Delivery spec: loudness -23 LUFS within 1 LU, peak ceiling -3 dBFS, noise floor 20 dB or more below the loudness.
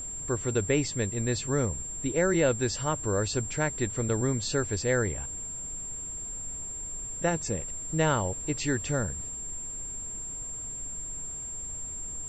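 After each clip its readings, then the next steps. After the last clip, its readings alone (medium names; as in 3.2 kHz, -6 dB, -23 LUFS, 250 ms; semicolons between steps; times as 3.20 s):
steady tone 7.4 kHz; tone level -35 dBFS; noise floor -38 dBFS; noise floor target -50 dBFS; loudness -30.0 LUFS; peak level -13.5 dBFS; loudness target -23.0 LUFS
-> band-stop 7.4 kHz, Q 30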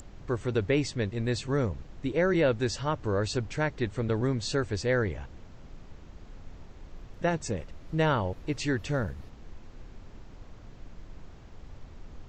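steady tone not found; noise floor -49 dBFS; noise floor target -50 dBFS
-> noise print and reduce 6 dB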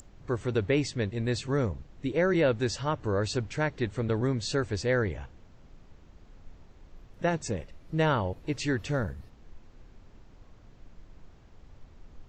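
noise floor -55 dBFS; loudness -29.5 LUFS; peak level -14.5 dBFS; loudness target -23.0 LUFS
-> trim +6.5 dB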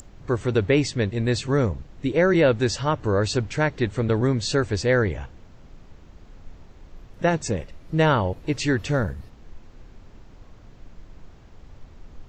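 loudness -23.0 LUFS; peak level -8.0 dBFS; noise floor -48 dBFS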